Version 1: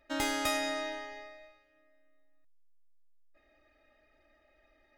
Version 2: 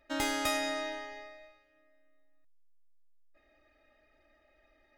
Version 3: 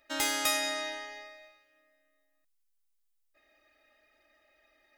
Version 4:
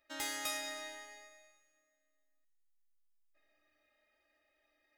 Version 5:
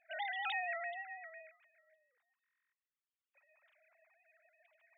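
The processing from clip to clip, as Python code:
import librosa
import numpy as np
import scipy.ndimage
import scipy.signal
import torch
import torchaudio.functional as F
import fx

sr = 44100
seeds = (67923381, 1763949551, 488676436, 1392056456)

y1 = x
y2 = fx.tilt_eq(y1, sr, slope=2.5)
y3 = fx.comb_fb(y2, sr, f0_hz=75.0, decay_s=1.8, harmonics='all', damping=0.0, mix_pct=80)
y3 = F.gain(torch.from_numpy(y3), 2.5).numpy()
y4 = fx.sine_speech(y3, sr)
y4 = fx.buffer_glitch(y4, sr, at_s=(2.43,), block=1024, repeats=12)
y4 = F.gain(torch.from_numpy(y4), 1.5).numpy()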